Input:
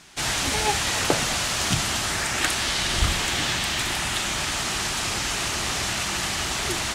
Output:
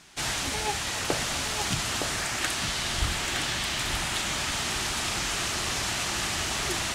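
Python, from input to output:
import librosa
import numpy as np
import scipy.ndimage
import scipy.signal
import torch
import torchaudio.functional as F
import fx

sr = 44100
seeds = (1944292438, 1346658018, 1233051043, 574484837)

p1 = fx.rider(x, sr, range_db=10, speed_s=0.5)
p2 = p1 + fx.echo_single(p1, sr, ms=914, db=-6.0, dry=0)
y = p2 * 10.0 ** (-5.0 / 20.0)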